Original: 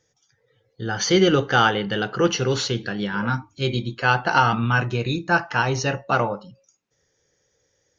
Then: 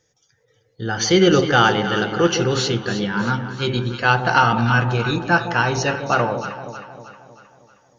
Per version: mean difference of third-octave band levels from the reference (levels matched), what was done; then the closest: 4.5 dB: de-hum 133.4 Hz, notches 23; on a send: echo whose repeats swap between lows and highs 157 ms, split 880 Hz, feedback 70%, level -7.5 dB; on the sum: trim +2.5 dB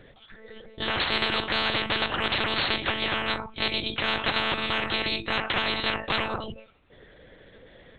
10.5 dB: monotone LPC vocoder at 8 kHz 220 Hz; spectrum-flattening compressor 10:1; trim -4.5 dB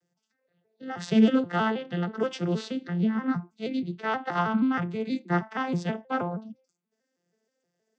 7.5 dB: vocoder on a broken chord major triad, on F3, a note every 159 ms; peaking EQ 570 Hz -8 dB 0.22 oct; trim -4.5 dB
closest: first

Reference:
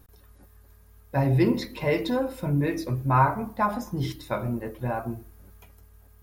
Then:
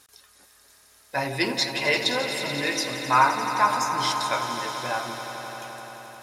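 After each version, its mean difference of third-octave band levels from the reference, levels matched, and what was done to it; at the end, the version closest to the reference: 13.0 dB: frequency weighting ITU-R 468; echo with a slow build-up 87 ms, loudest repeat 5, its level -13 dB; trim +3 dB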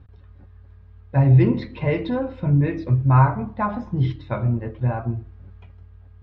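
7.0 dB: low-pass 3.5 kHz 24 dB/octave; peaking EQ 99 Hz +13 dB 1.4 oct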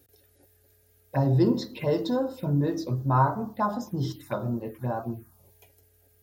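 3.0 dB: high-pass 93 Hz 24 dB/octave; touch-sensitive phaser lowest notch 170 Hz, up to 2.3 kHz, full sweep at -26 dBFS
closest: third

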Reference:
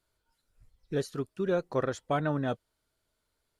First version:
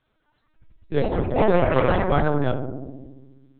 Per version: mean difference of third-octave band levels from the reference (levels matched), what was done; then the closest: 9.5 dB: filtered feedback delay 68 ms, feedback 82%, low-pass 1 kHz, level -6 dB; ever faster or slower copies 218 ms, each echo +4 st, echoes 3; LPC vocoder at 8 kHz pitch kept; trim +7.5 dB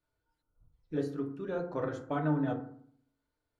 6.5 dB: treble shelf 4.3 kHz -11.5 dB; FDN reverb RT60 0.59 s, low-frequency decay 1.3×, high-frequency decay 0.4×, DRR 0.5 dB; spectral selection erased 0.42–0.73 s, 1.5–9.4 kHz; trim -7 dB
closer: second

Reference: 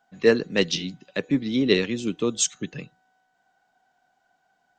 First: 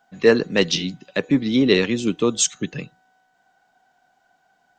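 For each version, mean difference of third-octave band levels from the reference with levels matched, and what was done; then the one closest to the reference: 1.0 dB: dynamic bell 950 Hz, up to +4 dB, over -35 dBFS, Q 1.1; in parallel at -1.5 dB: peak limiter -15 dBFS, peak gain reduction 11 dB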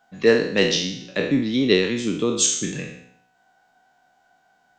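5.5 dB: spectral sustain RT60 0.64 s; in parallel at -3 dB: compression, threshold -34 dBFS, peak gain reduction 21 dB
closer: first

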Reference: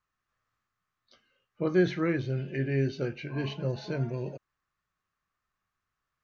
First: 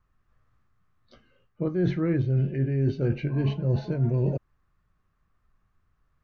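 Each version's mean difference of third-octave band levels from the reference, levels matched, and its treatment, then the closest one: 5.0 dB: tilt EQ -3.5 dB/octave; reverse; compression 16:1, threshold -28 dBFS, peak gain reduction 17 dB; reverse; trim +7 dB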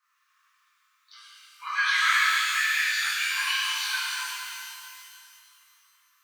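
27.0 dB: steep high-pass 990 Hz 72 dB/octave; pitch-shifted reverb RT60 2.5 s, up +12 st, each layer -8 dB, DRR -10.5 dB; trim +6.5 dB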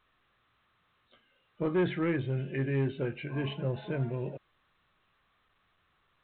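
3.0 dB: saturation -21.5 dBFS, distortion -14 dB; A-law 64 kbps 8 kHz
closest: third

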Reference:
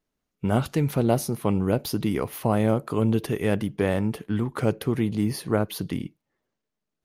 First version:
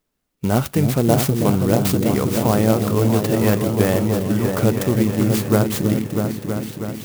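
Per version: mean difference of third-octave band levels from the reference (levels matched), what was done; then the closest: 9.0 dB: treble shelf 5.5 kHz +9 dB; on a send: delay with an opening low-pass 322 ms, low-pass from 400 Hz, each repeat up 2 oct, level -3 dB; on the sum: sampling jitter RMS 0.054 ms; trim +4.5 dB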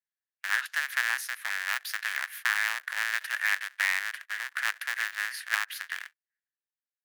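22.0 dB: cycle switcher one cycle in 2, inverted; gate -37 dBFS, range -16 dB; ladder high-pass 1.6 kHz, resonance 75%; trim +7 dB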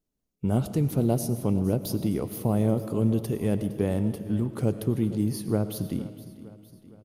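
5.0 dB: peaking EQ 1.7 kHz -13 dB 2.6 oct; on a send: feedback delay 462 ms, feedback 54%, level -17 dB; on the sum: algorithmic reverb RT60 1.6 s, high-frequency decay 0.8×, pre-delay 60 ms, DRR 11.5 dB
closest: third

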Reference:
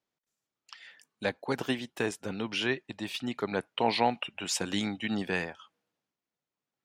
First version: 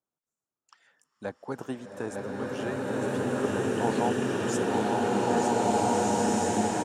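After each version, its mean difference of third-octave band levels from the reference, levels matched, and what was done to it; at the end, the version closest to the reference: 11.0 dB: low-pass 11 kHz 12 dB/octave; high-order bell 3.1 kHz -13 dB; on a send: delay 906 ms -4.5 dB; on the sum: swelling reverb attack 1890 ms, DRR -9 dB; trim -3.5 dB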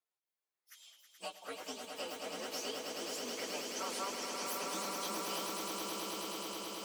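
15.0 dB: frequency axis rescaled in octaves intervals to 128%; high-pass 510 Hz 12 dB/octave; compression 3:1, threshold -40 dBFS, peak gain reduction 12 dB; echo with a slow build-up 107 ms, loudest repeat 8, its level -6 dB; trim -2 dB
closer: first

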